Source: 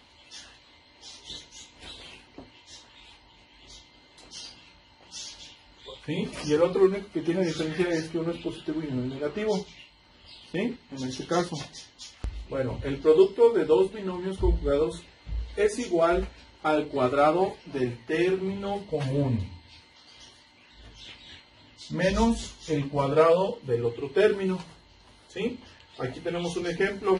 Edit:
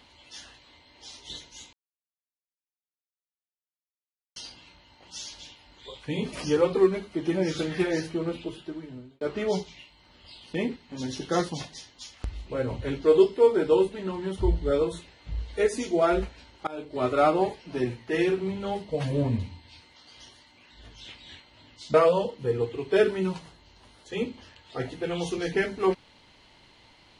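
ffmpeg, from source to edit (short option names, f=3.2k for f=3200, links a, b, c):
-filter_complex "[0:a]asplit=6[a][b][c][d][e][f];[a]atrim=end=1.73,asetpts=PTS-STARTPTS,afade=t=out:st=1.726:d=0.004:c=hsin[g];[b]atrim=start=1.73:end=4.36,asetpts=PTS-STARTPTS,volume=0[h];[c]atrim=start=4.36:end=9.21,asetpts=PTS-STARTPTS,afade=t=in:d=0.004:c=hsin,afade=t=out:st=3.86:d=0.99[i];[d]atrim=start=9.21:end=16.67,asetpts=PTS-STARTPTS,afade=t=in:d=0.004:c=hsin,afade=t=out:st=7.456:d=0.004:c=hsin:silence=0.0668344[j];[e]atrim=start=16.67:end=21.942,asetpts=PTS-STARTPTS,afade=t=in:d=0.48:silence=0.0668344[k];[f]atrim=start=23.178[l];[g][h][i][j][k]concat=n=5:v=0:a=1[m];[m][l]acrossfade=d=0.004:c1=hsin:c2=hsin"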